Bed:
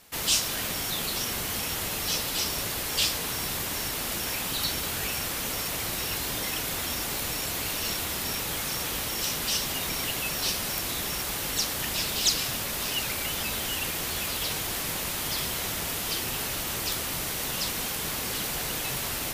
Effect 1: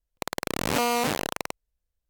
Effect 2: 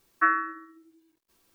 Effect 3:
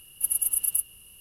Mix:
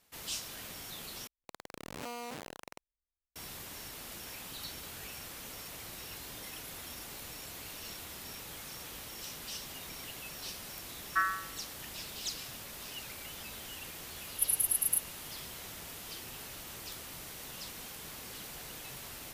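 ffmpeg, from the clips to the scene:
ffmpeg -i bed.wav -i cue0.wav -i cue1.wav -i cue2.wav -filter_complex "[3:a]asplit=2[link_01][link_02];[0:a]volume=-14.5dB[link_03];[link_01]acompressor=threshold=-37dB:ratio=6:attack=3.2:release=140:knee=1:detection=peak[link_04];[2:a]highpass=710[link_05];[link_03]asplit=2[link_06][link_07];[link_06]atrim=end=1.274[link_08];[1:a]atrim=end=2.09,asetpts=PTS-STARTPTS,volume=-17.5dB[link_09];[link_07]atrim=start=3.356[link_10];[link_04]atrim=end=1.2,asetpts=PTS-STARTPTS,volume=-16dB,afade=type=in:duration=0.004:curve=hsin,afade=type=out:start_time=1.196:duration=0.004:curve=hsin,adelay=6230[link_11];[link_05]atrim=end=1.54,asetpts=PTS-STARTPTS,volume=-7dB,afade=type=in:duration=0.004:curve=hsin,afade=type=out:start_time=1.536:duration=0.004:curve=hsin,adelay=10940[link_12];[link_02]atrim=end=1.2,asetpts=PTS-STARTPTS,volume=-4.5dB,afade=type=in:duration=0.004:curve=hsin,afade=type=out:start_time=1.196:duration=0.004:curve=hsin,adelay=14180[link_13];[link_08][link_09]acrossfade=duration=0.004:curve1=hsin:curve2=hsin[link_14];[link_14][link_10]acrossfade=duration=0.004:curve1=hsin:curve2=hsin[link_15];[link_15][link_11][link_12][link_13]amix=inputs=4:normalize=0" out.wav

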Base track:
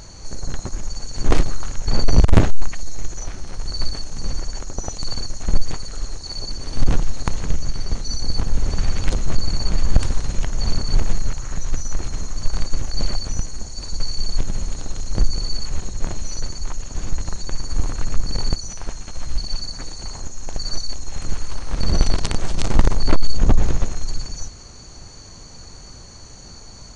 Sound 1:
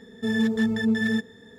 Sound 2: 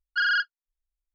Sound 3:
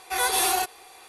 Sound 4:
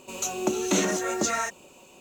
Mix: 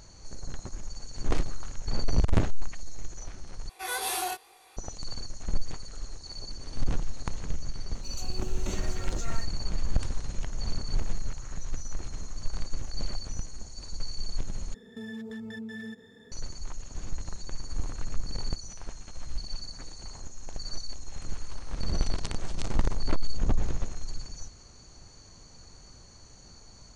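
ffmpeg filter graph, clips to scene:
ffmpeg -i bed.wav -i cue0.wav -i cue1.wav -i cue2.wav -i cue3.wav -filter_complex "[0:a]volume=-11dB[link_01];[3:a]flanger=delay=19:depth=4.1:speed=2.3[link_02];[1:a]acompressor=threshold=-32dB:ratio=6:attack=3.2:release=140:knee=1:detection=peak[link_03];[link_01]asplit=3[link_04][link_05][link_06];[link_04]atrim=end=3.694[link_07];[link_02]atrim=end=1.08,asetpts=PTS-STARTPTS,volume=-5dB[link_08];[link_05]atrim=start=4.766:end=14.744[link_09];[link_03]atrim=end=1.58,asetpts=PTS-STARTPTS,volume=-5dB[link_10];[link_06]atrim=start=16.316[link_11];[4:a]atrim=end=2,asetpts=PTS-STARTPTS,volume=-15dB,afade=type=in:duration=0.004:curve=hsin,afade=type=out:start_time=1.996:duration=0.004:curve=hsin,adelay=7950[link_12];[link_07][link_08]acrossfade=duration=0.004:curve1=hsin:curve2=hsin[link_13];[link_13][link_09]acrossfade=duration=0.004:curve1=hsin:curve2=hsin[link_14];[link_14][link_10]acrossfade=duration=0.004:curve1=hsin:curve2=hsin[link_15];[link_15][link_11]acrossfade=duration=0.004:curve1=hsin:curve2=hsin[link_16];[link_16][link_12]amix=inputs=2:normalize=0" out.wav

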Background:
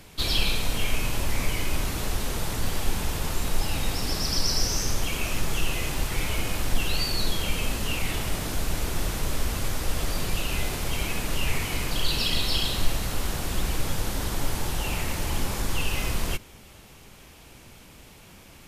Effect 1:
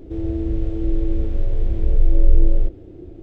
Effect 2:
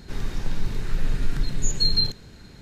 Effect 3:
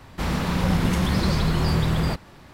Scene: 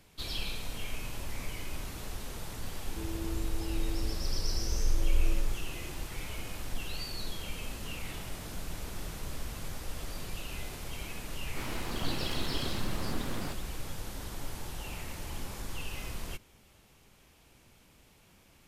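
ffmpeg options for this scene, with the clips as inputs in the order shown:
ffmpeg -i bed.wav -i cue0.wav -i cue1.wav -i cue2.wav -filter_complex "[3:a]asplit=2[link_01][link_02];[0:a]volume=-12dB[link_03];[link_01]acompressor=threshold=-32dB:ratio=6:attack=3.2:release=140:knee=1:detection=peak[link_04];[link_02]aeval=exprs='abs(val(0))':channel_layout=same[link_05];[1:a]atrim=end=3.22,asetpts=PTS-STARTPTS,volume=-13.5dB,afade=type=in:duration=0.004:curve=hsin,afade=type=out:start_time=3.216:duration=0.004:curve=hsin,adelay=2860[link_06];[link_04]atrim=end=2.53,asetpts=PTS-STARTPTS,volume=-17dB,afade=type=in:duration=0.004:curve=hsin,afade=type=out:start_time=2.526:duration=0.004:curve=hsin,adelay=7650[link_07];[link_05]atrim=end=2.53,asetpts=PTS-STARTPTS,volume=-11.5dB,afade=type=in:duration=0.004:curve=hsin,afade=type=out:start_time=2.526:duration=0.004:curve=hsin,adelay=501858S[link_08];[link_03][link_06][link_07][link_08]amix=inputs=4:normalize=0" out.wav

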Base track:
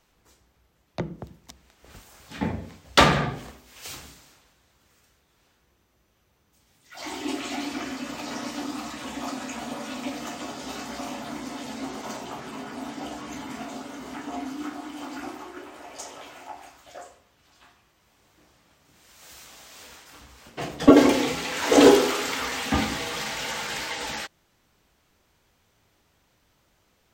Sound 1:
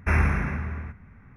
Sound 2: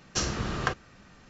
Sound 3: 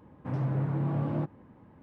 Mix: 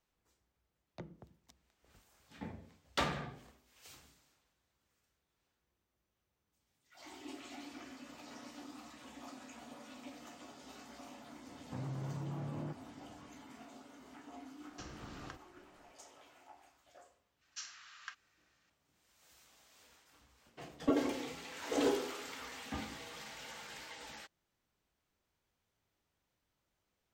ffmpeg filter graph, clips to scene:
ffmpeg -i bed.wav -i cue0.wav -i cue1.wav -i cue2.wav -filter_complex "[2:a]asplit=2[link_01][link_02];[0:a]volume=-18dB[link_03];[3:a]acompressor=threshold=-33dB:ratio=6:attack=3.2:release=140:knee=1:detection=peak[link_04];[link_01]acrossover=split=110|3100[link_05][link_06][link_07];[link_05]acompressor=threshold=-41dB:ratio=4[link_08];[link_06]acompressor=threshold=-35dB:ratio=4[link_09];[link_07]acompressor=threshold=-44dB:ratio=4[link_10];[link_08][link_09][link_10]amix=inputs=3:normalize=0[link_11];[link_02]highpass=frequency=1400:width=0.5412,highpass=frequency=1400:width=1.3066[link_12];[link_04]atrim=end=1.82,asetpts=PTS-STARTPTS,volume=-5dB,afade=type=in:duration=0.004:curve=hsin,afade=type=out:start_time=1.816:duration=0.004:curve=hsin,adelay=11470[link_13];[link_11]atrim=end=1.29,asetpts=PTS-STARTPTS,volume=-14.5dB,afade=type=in:duration=0.004:curve=hsin,afade=type=out:start_time=1.286:duration=0.004:curve=hsin,adelay=14630[link_14];[link_12]atrim=end=1.29,asetpts=PTS-STARTPTS,volume=-15.5dB,afade=type=in:duration=0.004:curve=hsin,afade=type=out:start_time=1.286:duration=0.004:curve=hsin,adelay=17410[link_15];[link_03][link_13][link_14][link_15]amix=inputs=4:normalize=0" out.wav

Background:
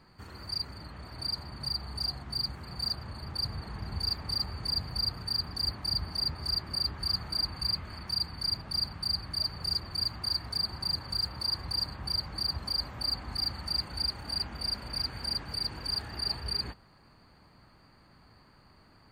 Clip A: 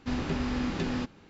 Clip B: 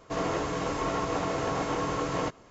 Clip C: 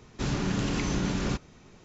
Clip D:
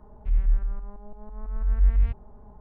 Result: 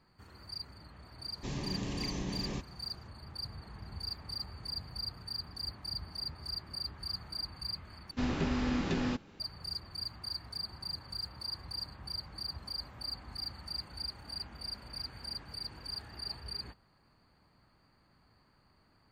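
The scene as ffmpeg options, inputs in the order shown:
ffmpeg -i bed.wav -i cue0.wav -i cue1.wav -i cue2.wav -filter_complex "[0:a]volume=-8.5dB[link_01];[3:a]asuperstop=centerf=1400:order=4:qfactor=3.7[link_02];[link_01]asplit=2[link_03][link_04];[link_03]atrim=end=8.114[link_05];[1:a]atrim=end=1.29,asetpts=PTS-STARTPTS,volume=-1.5dB[link_06];[link_04]atrim=start=9.396[link_07];[link_02]atrim=end=1.84,asetpts=PTS-STARTPTS,volume=-9dB,afade=type=in:duration=0.004:curve=hsin,afade=type=out:start_time=1.836:duration=0.004:curve=hsin,adelay=1240[link_08];[link_05][link_06]acrossfade=duration=0.004:curve1=hsin:curve2=hsin[link_09];[link_09][link_07]acrossfade=duration=0.004:curve1=hsin:curve2=hsin[link_10];[link_10][link_08]amix=inputs=2:normalize=0" out.wav

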